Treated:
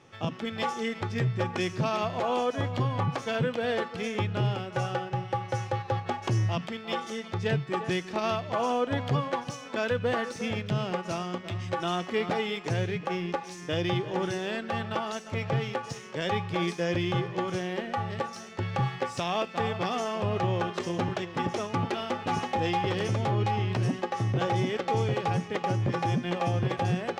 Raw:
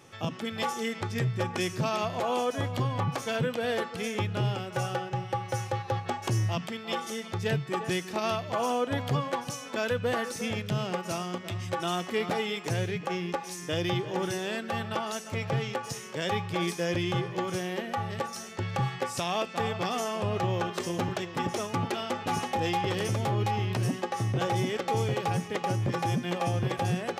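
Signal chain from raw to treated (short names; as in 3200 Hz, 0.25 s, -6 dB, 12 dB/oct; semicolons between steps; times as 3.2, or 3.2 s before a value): air absorption 88 m; in parallel at -7.5 dB: crossover distortion -44.5 dBFS; on the sum: gain -1.5 dB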